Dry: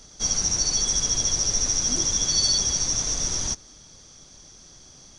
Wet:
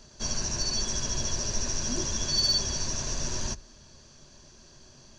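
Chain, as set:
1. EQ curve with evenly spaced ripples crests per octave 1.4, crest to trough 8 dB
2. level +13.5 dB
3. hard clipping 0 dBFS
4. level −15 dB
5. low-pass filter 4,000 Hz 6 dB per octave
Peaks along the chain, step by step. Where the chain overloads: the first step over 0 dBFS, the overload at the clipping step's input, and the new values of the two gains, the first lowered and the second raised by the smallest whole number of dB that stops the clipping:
−9.0, +4.5, 0.0, −15.0, −16.5 dBFS
step 2, 4.5 dB
step 2 +8.5 dB, step 4 −10 dB

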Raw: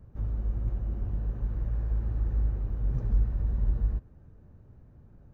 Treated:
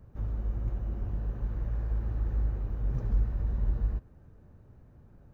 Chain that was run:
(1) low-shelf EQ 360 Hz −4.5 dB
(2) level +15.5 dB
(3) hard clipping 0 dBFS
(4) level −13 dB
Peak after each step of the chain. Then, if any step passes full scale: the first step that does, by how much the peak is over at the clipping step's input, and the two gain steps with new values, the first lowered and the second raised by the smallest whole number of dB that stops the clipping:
−20.0, −4.5, −4.5, −17.5 dBFS
no step passes full scale

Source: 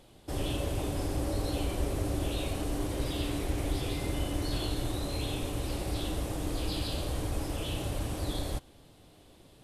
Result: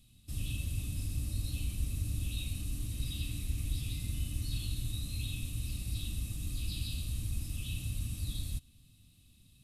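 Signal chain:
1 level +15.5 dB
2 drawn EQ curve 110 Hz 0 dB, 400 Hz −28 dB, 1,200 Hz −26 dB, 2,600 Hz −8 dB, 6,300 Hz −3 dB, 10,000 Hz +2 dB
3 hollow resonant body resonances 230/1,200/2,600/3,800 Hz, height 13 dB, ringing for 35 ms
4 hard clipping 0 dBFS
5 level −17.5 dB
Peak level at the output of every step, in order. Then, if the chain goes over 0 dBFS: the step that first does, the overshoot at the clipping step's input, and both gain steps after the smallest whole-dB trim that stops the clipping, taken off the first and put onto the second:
−3.0, −5.5, −4.5, −4.5, −22.0 dBFS
no step passes full scale

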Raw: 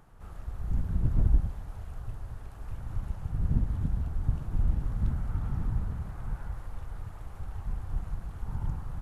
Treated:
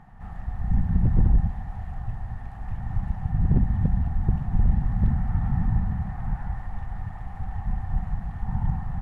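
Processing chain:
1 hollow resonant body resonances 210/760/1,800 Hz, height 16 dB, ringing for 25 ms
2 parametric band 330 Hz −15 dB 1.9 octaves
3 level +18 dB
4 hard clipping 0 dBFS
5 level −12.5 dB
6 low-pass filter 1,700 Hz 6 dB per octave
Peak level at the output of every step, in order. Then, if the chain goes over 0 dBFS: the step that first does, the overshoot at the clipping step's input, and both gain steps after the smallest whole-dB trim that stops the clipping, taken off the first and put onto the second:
−6.5, −9.5, +8.5, 0.0, −12.5, −12.5 dBFS
step 3, 8.5 dB
step 3 +9 dB, step 5 −3.5 dB

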